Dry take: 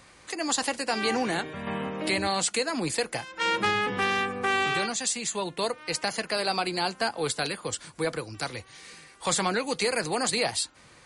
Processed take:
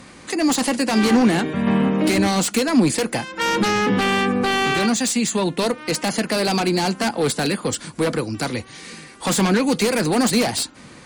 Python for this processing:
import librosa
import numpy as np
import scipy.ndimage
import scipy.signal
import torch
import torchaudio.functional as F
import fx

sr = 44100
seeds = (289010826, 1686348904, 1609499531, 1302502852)

y = fx.fold_sine(x, sr, drive_db=10, ceiling_db=-12.5)
y = fx.peak_eq(y, sr, hz=230.0, db=11.5, octaves=1.2)
y = y * librosa.db_to_amplitude(-5.5)